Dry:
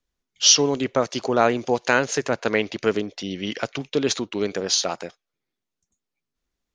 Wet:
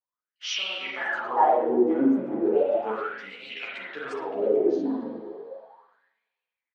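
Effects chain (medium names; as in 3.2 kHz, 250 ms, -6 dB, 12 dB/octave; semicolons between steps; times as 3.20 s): pitch shift switched off and on +5 st, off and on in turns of 194 ms; tilt shelf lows +3.5 dB, about 1.3 kHz; level rider gain up to 5 dB; in parallel at -4 dB: bit crusher 6-bit; on the sum: spring tank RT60 1.6 s, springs 37/41 ms, chirp 35 ms, DRR -3.5 dB; wah-wah 0.35 Hz 270–2500 Hz, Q 7.4; on a send: delay 109 ms -23 dB; on the sum: three-phase chorus; trim +2 dB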